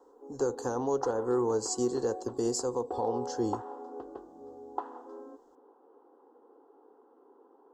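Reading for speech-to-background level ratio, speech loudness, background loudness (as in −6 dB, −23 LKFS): 11.0 dB, −31.5 LKFS, −42.5 LKFS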